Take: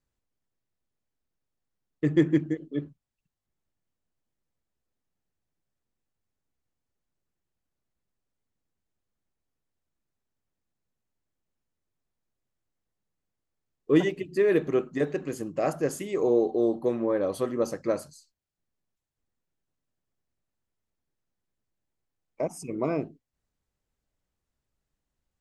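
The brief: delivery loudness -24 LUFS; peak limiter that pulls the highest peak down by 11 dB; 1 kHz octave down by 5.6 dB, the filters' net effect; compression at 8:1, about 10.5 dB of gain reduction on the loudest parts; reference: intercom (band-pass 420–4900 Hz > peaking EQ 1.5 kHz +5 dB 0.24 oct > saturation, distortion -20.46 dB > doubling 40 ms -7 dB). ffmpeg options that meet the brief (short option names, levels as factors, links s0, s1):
-filter_complex "[0:a]equalizer=f=1000:t=o:g=-8.5,acompressor=threshold=0.0447:ratio=8,alimiter=level_in=1.78:limit=0.0631:level=0:latency=1,volume=0.562,highpass=420,lowpass=4900,equalizer=f=1500:t=o:w=0.24:g=5,asoftclip=threshold=0.0224,asplit=2[s0][s1];[s1]adelay=40,volume=0.447[s2];[s0][s2]amix=inputs=2:normalize=0,volume=9.44"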